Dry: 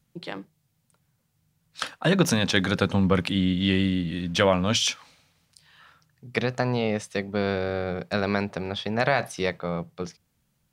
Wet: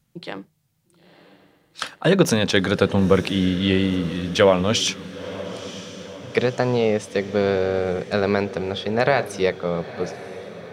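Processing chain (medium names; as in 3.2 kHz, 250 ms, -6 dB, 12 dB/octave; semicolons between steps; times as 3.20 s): dynamic bell 440 Hz, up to +7 dB, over -38 dBFS, Q 1.9; echo that smears into a reverb 953 ms, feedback 58%, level -15 dB; trim +2 dB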